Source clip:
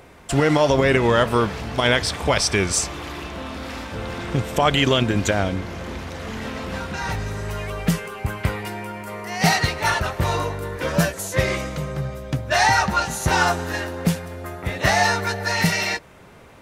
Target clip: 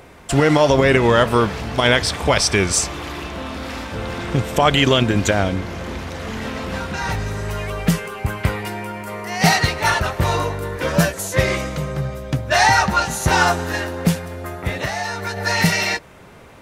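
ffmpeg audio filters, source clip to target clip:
-filter_complex "[0:a]asettb=1/sr,asplit=3[a][b][c];[a]atrim=end=14.774[d];[b]atrim=start=14.77:end=15.37,asetpts=PTS-STARTPTS,afade=t=in:d=0.004:c=qsin,afade=t=out:st=0.596:d=0.004:c=qsin,acompressor=threshold=-25dB:ratio=6[e];[c]atrim=start=15.366[f];[d][e]acrossfade=d=0.004:c1=hsin:c2=qsin[g];[g][f]acrossfade=d=0.004:c1=qsin:c2=hsin,volume=3dB"

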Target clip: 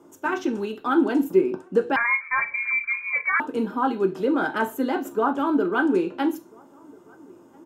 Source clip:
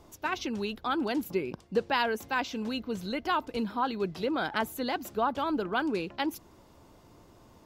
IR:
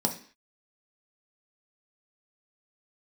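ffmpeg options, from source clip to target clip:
-filter_complex "[0:a]asplit=2[a][b];[b]aeval=exprs='sgn(val(0))*max(abs(val(0))-0.00447,0)':c=same,volume=-8dB[c];[a][c]amix=inputs=2:normalize=0,asplit=2[d][e];[e]adelay=1341,volume=-27dB,highshelf=f=4k:g=-30.2[f];[d][f]amix=inputs=2:normalize=0[g];[1:a]atrim=start_sample=2205,asetrate=70560,aresample=44100[h];[g][h]afir=irnorm=-1:irlink=0,asettb=1/sr,asplit=3[i][j][k];[i]atrim=end=1.964[l];[j]atrim=start=1.96:end=3.4,asetpts=PTS-STARTPTS,afade=t=in:d=0.004:c=qsin,afade=t=out:st=1.436:d=0.004:c=qsin,lowpass=f=2.2k:t=q:w=0.5098,lowpass=f=2.2k:t=q:w=0.6013,lowpass=f=2.2k:t=q:w=0.9,lowpass=f=2.2k:t=q:w=2.563,afreqshift=-2600[m];[k]atrim=start=3.396[n];[l][m]acrossfade=d=0.004:c1=hsin:c2=qsin[o];[o][n]acrossfade=d=0.004:c1=qsin:c2=hsin,volume=-5dB" -ar 48000 -c:a libopus -b:a 128k

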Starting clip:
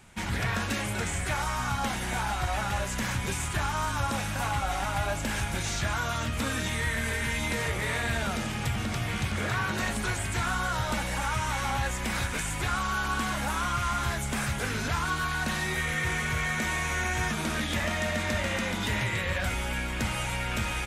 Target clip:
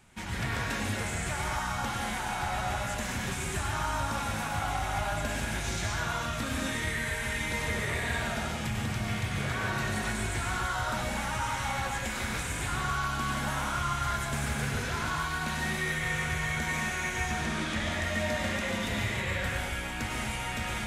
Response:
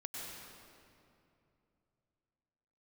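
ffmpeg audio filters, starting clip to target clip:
-filter_complex "[0:a]asettb=1/sr,asplit=3[a][b][c];[a]atrim=end=17.294[d];[b]atrim=start=17.29:end=17.92,asetpts=PTS-STARTPTS,afade=t=in:d=0.004:c=qsin,afade=t=out:st=0.626:d=0.004:c=qsin,lowpass=8.7k[e];[c]atrim=start=17.916[f];[d][e]acrossfade=d=0.004:c1=hsin:c2=qsin[g];[g][f]acrossfade=d=0.004:c1=qsin:c2=hsin[h];[1:a]atrim=start_sample=2205,afade=t=out:st=0.31:d=0.01,atrim=end_sample=14112[i];[h][i]afir=irnorm=-1:irlink=0"

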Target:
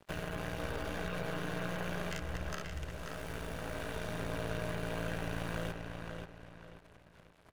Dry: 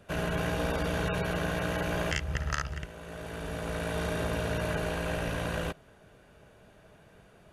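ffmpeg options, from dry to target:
-filter_complex "[0:a]acrusher=bits=7:mix=0:aa=0.5,acompressor=threshold=-37dB:ratio=3,aeval=exprs='0.0562*(cos(1*acos(clip(val(0)/0.0562,-1,1)))-cos(1*PI/2))+0.0126*(cos(4*acos(clip(val(0)/0.0562,-1,1)))-cos(4*PI/2))':c=same,asplit=2[a][b];[b]adelay=533,lowpass=f=4.8k:p=1,volume=-4.5dB,asplit=2[c][d];[d]adelay=533,lowpass=f=4.8k:p=1,volume=0.35,asplit=2[e][f];[f]adelay=533,lowpass=f=4.8k:p=1,volume=0.35,asplit=2[g][h];[h]adelay=533,lowpass=f=4.8k:p=1,volume=0.35[i];[c][e][g][i]amix=inputs=4:normalize=0[j];[a][j]amix=inputs=2:normalize=0,volume=-2.5dB"

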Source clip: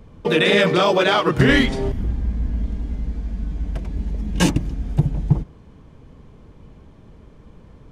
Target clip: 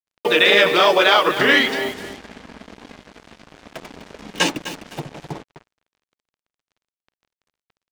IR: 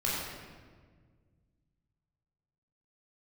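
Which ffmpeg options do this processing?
-filter_complex "[0:a]asplit=2[a][b];[b]acompressor=threshold=-26dB:ratio=20,volume=0.5dB[c];[a][c]amix=inputs=2:normalize=0,highpass=420,lowpass=3.5k,aemphasis=mode=production:type=75fm,aecho=1:1:254|508|762:0.237|0.0593|0.0148,acrusher=bits=5:mix=0:aa=0.5,volume=1.5dB"

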